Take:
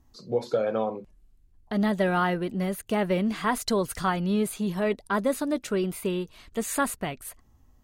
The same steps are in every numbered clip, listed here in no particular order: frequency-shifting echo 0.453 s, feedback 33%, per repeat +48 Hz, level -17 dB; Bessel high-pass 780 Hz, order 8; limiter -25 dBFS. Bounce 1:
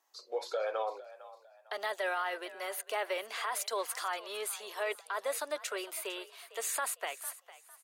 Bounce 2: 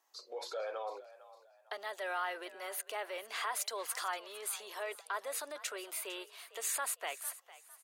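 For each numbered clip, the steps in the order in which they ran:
Bessel high-pass > limiter > frequency-shifting echo; limiter > Bessel high-pass > frequency-shifting echo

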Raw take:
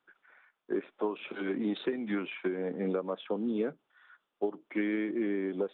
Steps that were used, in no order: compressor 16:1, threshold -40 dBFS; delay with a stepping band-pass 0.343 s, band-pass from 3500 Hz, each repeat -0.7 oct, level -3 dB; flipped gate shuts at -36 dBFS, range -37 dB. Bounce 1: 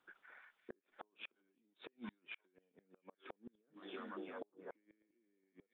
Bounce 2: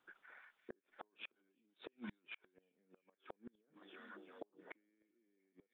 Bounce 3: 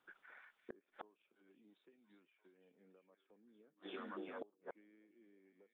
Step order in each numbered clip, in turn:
delay with a stepping band-pass > compressor > flipped gate; compressor > delay with a stepping band-pass > flipped gate; delay with a stepping band-pass > flipped gate > compressor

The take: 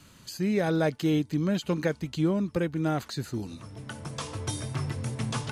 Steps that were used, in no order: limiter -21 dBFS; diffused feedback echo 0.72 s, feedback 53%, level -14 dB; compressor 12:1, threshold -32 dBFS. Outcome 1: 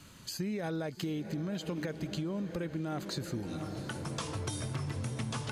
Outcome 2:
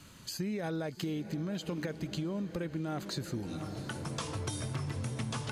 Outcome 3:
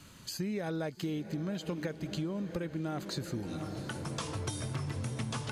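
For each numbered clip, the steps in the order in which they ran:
diffused feedback echo > limiter > compressor; limiter > diffused feedback echo > compressor; diffused feedback echo > compressor > limiter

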